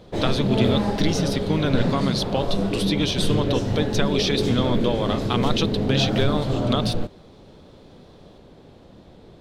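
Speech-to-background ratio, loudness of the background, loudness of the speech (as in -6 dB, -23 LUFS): -1.0 dB, -24.5 LUFS, -25.5 LUFS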